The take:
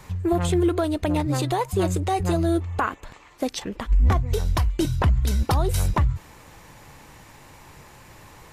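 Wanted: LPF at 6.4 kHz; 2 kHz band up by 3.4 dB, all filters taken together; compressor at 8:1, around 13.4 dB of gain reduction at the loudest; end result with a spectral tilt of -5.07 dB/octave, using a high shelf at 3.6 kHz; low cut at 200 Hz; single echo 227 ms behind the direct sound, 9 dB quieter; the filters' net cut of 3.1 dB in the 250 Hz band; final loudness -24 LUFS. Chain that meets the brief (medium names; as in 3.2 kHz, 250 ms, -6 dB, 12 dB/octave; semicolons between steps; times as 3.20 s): high-pass 200 Hz; low-pass 6.4 kHz; peaking EQ 250 Hz -3.5 dB; peaking EQ 2 kHz +5.5 dB; treble shelf 3.6 kHz -3.5 dB; compression 8:1, threshold -34 dBFS; delay 227 ms -9 dB; trim +15.5 dB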